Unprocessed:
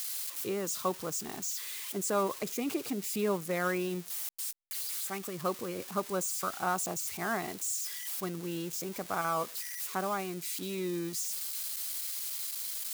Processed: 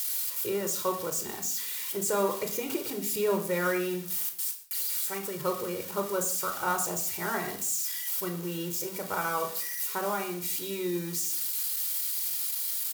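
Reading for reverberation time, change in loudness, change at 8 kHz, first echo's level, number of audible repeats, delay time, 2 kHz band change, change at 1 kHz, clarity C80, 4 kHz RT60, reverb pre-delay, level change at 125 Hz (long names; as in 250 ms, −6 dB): 0.55 s, +4.5 dB, +4.0 dB, −19.0 dB, 1, 120 ms, +3.5 dB, +2.0 dB, 13.5 dB, 0.45 s, 22 ms, +1.5 dB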